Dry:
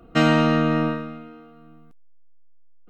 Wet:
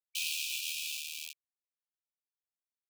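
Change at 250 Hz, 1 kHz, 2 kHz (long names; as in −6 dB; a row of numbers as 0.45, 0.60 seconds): below −40 dB, below −40 dB, −12.5 dB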